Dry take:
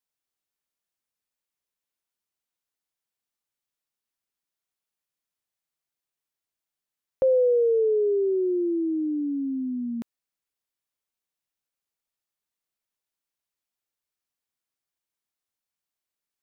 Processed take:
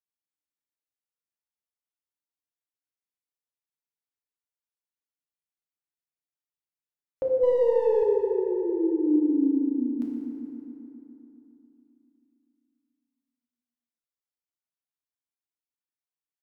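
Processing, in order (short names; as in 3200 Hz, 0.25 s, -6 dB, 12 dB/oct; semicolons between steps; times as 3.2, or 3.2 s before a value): 7.43–8.03 half-wave gain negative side -7 dB; spectral noise reduction 10 dB; FDN reverb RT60 3.5 s, high-frequency decay 0.5×, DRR -3 dB; gain -6 dB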